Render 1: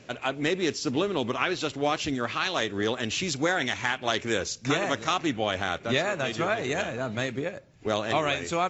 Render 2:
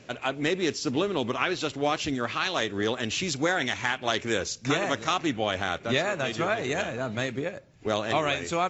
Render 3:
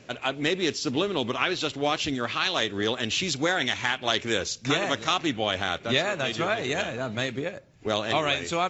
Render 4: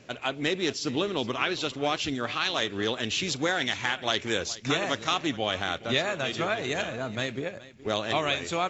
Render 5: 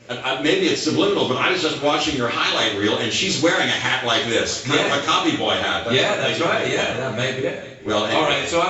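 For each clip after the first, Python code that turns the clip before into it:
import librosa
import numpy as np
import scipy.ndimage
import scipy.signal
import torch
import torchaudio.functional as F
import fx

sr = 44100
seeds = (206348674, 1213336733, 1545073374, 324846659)

y1 = x
y2 = fx.dynamic_eq(y1, sr, hz=3500.0, q=1.5, threshold_db=-45.0, ratio=4.0, max_db=5)
y3 = y2 + 10.0 ** (-18.5 / 20.0) * np.pad(y2, (int(420 * sr / 1000.0), 0))[:len(y2)]
y3 = y3 * librosa.db_to_amplitude(-2.0)
y4 = fx.rev_double_slope(y3, sr, seeds[0], early_s=0.42, late_s=1.6, knee_db=-18, drr_db=-6.5)
y4 = y4 * librosa.db_to_amplitude(2.0)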